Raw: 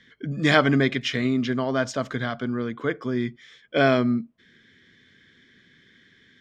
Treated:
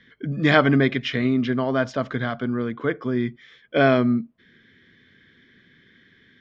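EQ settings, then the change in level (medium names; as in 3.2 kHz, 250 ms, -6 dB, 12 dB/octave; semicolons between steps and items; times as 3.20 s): distance through air 170 m; +2.5 dB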